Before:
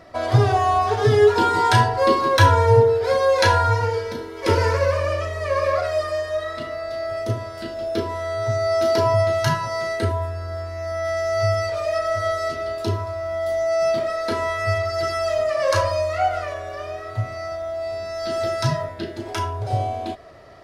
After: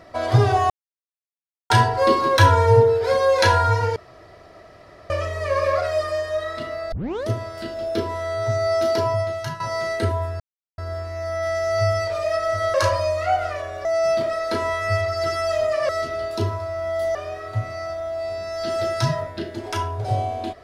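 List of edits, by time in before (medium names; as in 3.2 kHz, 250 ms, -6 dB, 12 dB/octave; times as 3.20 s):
0.70–1.70 s: mute
3.96–5.10 s: room tone
6.92 s: tape start 0.36 s
8.69–9.60 s: fade out, to -12 dB
10.40 s: insert silence 0.38 s
12.36–13.62 s: swap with 15.66–16.77 s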